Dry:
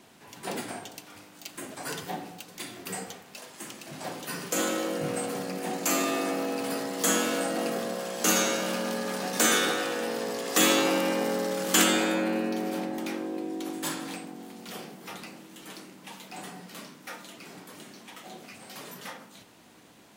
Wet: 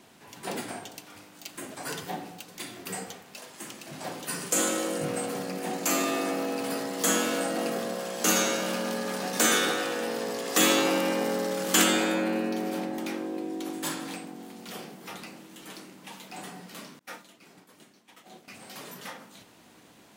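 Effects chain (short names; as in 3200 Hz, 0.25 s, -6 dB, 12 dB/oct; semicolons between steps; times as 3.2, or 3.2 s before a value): 4.28–5.05 bell 8700 Hz +8.5 dB 0.75 oct; 16.99–18.48 expander -38 dBFS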